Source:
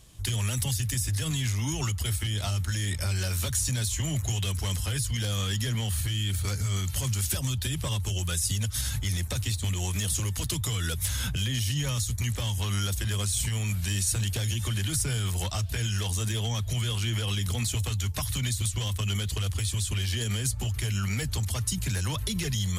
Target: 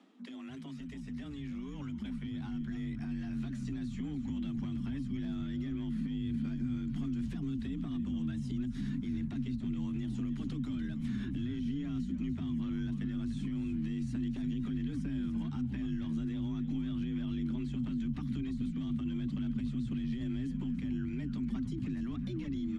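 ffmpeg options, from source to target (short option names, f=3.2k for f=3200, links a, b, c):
-filter_complex "[0:a]highpass=100,lowpass=2k,equalizer=f=380:t=o:w=0.27:g=-8,areverse,acompressor=mode=upward:threshold=-36dB:ratio=2.5,areverse,alimiter=level_in=8dB:limit=-24dB:level=0:latency=1:release=230,volume=-8dB,afreqshift=140,asplit=4[a][b][c][d];[b]adelay=294,afreqshift=-100,volume=-11.5dB[e];[c]adelay=588,afreqshift=-200,volume=-21.7dB[f];[d]adelay=882,afreqshift=-300,volume=-31.8dB[g];[a][e][f][g]amix=inputs=4:normalize=0,asubboost=boost=12:cutoff=160,volume=-6.5dB"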